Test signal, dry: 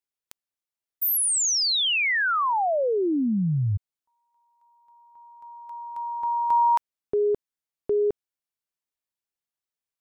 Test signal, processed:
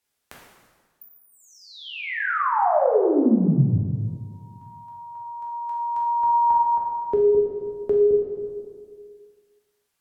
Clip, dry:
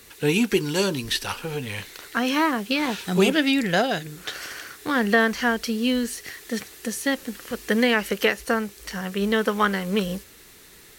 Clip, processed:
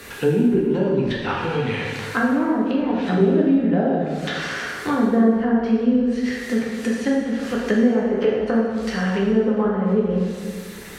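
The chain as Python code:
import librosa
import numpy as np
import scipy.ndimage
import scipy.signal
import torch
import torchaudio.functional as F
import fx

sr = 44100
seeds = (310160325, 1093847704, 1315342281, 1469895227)

y = fx.env_lowpass_down(x, sr, base_hz=530.0, full_db=-19.5)
y = fx.rev_plate(y, sr, seeds[0], rt60_s=1.5, hf_ratio=0.75, predelay_ms=0, drr_db=-4.5)
y = fx.band_squash(y, sr, depth_pct=40)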